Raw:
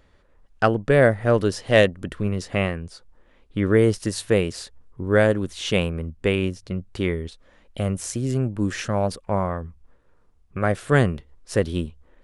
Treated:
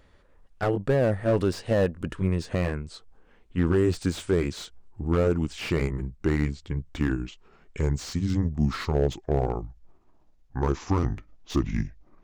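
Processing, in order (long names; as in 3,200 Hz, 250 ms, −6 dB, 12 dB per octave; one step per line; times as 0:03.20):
pitch glide at a constant tempo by −8 semitones starting unshifted
brickwall limiter −12.5 dBFS, peak gain reduction 8.5 dB
slew-rate limiting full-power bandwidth 74 Hz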